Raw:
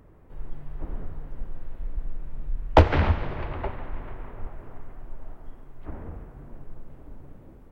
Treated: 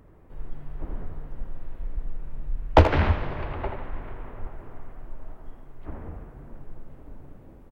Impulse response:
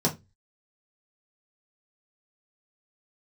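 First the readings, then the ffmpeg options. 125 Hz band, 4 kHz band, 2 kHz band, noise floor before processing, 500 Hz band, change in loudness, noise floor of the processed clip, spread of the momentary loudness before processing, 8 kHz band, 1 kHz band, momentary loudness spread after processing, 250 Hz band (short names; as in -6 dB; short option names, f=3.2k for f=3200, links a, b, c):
0.0 dB, +0.5 dB, +0.5 dB, -50 dBFS, +0.5 dB, +0.5 dB, -49 dBFS, 25 LU, n/a, +0.5 dB, 25 LU, +0.5 dB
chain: -filter_complex "[0:a]asplit=2[a][b];[b]adelay=80,highpass=300,lowpass=3.4k,asoftclip=type=hard:threshold=-10.5dB,volume=-7dB[c];[a][c]amix=inputs=2:normalize=0"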